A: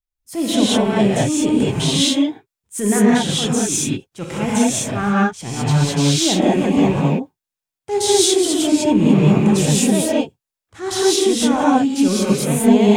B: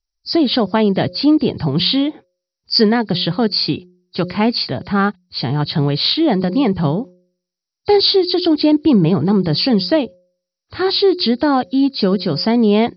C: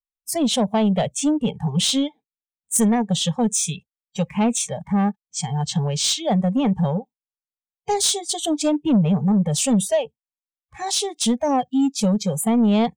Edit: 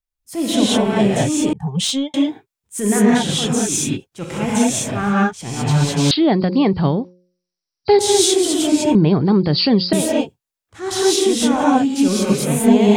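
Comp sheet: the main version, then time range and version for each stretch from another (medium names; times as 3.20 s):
A
1.53–2.14 s: from C
6.11–7.99 s: from B
8.95–9.93 s: from B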